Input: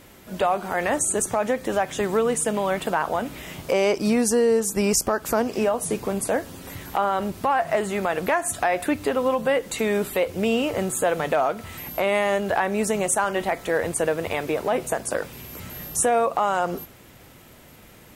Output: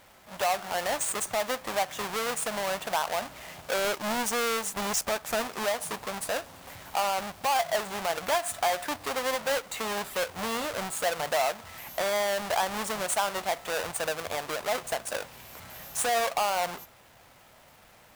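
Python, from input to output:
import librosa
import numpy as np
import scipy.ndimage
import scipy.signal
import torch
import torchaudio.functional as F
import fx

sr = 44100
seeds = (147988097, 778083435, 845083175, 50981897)

y = fx.halfwave_hold(x, sr)
y = fx.low_shelf_res(y, sr, hz=500.0, db=-9.0, q=1.5)
y = y * 10.0 ** (-9.0 / 20.0)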